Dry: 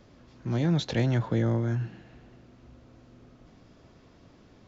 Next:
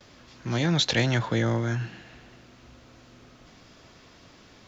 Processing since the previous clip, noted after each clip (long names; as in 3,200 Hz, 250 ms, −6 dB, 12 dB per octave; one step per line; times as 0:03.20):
tilt shelving filter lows −6.5 dB
noise gate with hold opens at −50 dBFS
level +6 dB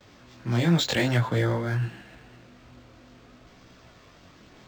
multi-voice chorus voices 2, 0.54 Hz, delay 20 ms, depth 4.8 ms
linearly interpolated sample-rate reduction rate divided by 4×
level +3.5 dB